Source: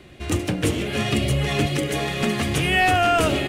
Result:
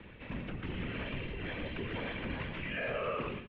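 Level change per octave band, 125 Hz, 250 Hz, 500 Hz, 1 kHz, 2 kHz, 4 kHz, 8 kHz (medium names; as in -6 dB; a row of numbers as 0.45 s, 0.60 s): -17.5 dB, -17.0 dB, -15.5 dB, -20.5 dB, -15.5 dB, -20.0 dB, under -40 dB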